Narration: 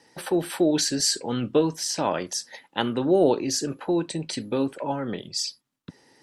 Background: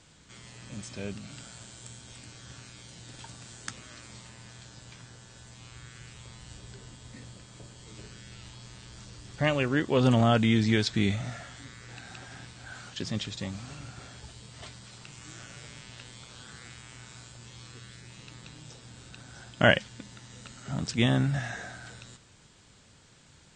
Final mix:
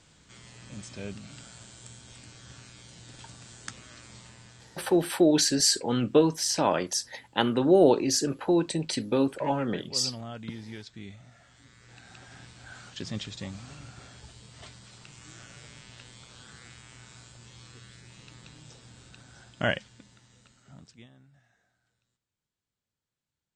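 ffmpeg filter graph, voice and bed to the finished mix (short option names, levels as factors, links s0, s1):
-filter_complex "[0:a]adelay=4600,volume=1.06[s0];[1:a]volume=4.73,afade=t=out:st=4.3:d=0.85:silence=0.158489,afade=t=in:st=11.31:d=1.23:silence=0.177828,afade=t=out:st=18.84:d=2.25:silence=0.0316228[s1];[s0][s1]amix=inputs=2:normalize=0"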